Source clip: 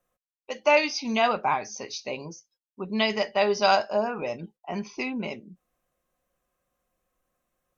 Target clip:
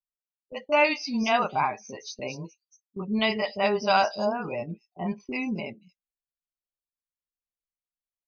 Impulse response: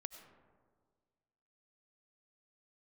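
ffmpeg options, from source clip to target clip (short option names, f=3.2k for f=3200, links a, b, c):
-filter_complex "[0:a]afftdn=nr=20:nf=-38,agate=range=-14dB:threshold=-43dB:ratio=16:detection=peak,lowshelf=f=120:g=10.5,atempo=0.94,acrossover=split=450|5900[a][b][c];[b]adelay=30[d];[c]adelay=260[e];[a][d][e]amix=inputs=3:normalize=0"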